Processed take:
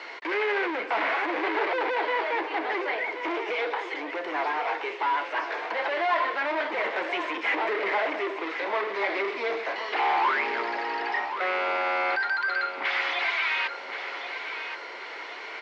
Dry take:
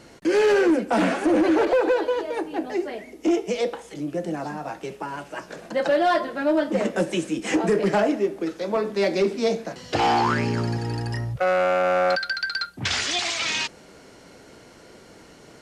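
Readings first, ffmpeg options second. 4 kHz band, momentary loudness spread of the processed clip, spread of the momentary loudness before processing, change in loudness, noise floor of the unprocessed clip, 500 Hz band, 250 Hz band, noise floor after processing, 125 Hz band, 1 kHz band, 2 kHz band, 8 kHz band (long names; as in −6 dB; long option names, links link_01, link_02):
−5.5 dB, 8 LU, 11 LU, −4.0 dB, −49 dBFS, −8.0 dB, −13.5 dB, −39 dBFS, below −35 dB, 0.0 dB, +3.0 dB, below −20 dB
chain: -filter_complex "[0:a]asplit=2[link_01][link_02];[link_02]highpass=frequency=720:poles=1,volume=26dB,asoftclip=type=tanh:threshold=-12dB[link_03];[link_01][link_03]amix=inputs=2:normalize=0,lowpass=frequency=1100:poles=1,volume=-6dB,acrossover=split=2900[link_04][link_05];[link_05]acompressor=threshold=-44dB:ratio=4:attack=1:release=60[link_06];[link_04][link_06]amix=inputs=2:normalize=0,highpass=frequency=390:width=0.5412,highpass=frequency=390:width=1.3066,equalizer=frequency=550:width_type=q:width=4:gain=-6,equalizer=frequency=1000:width_type=q:width=4:gain=6,equalizer=frequency=2100:width_type=q:width=4:gain=9,lowpass=frequency=4200:width=0.5412,lowpass=frequency=4200:width=1.3066,crystalizer=i=5:c=0,aecho=1:1:1077|2154|3231|4308|5385:0.335|0.144|0.0619|0.0266|0.0115,volume=-8.5dB"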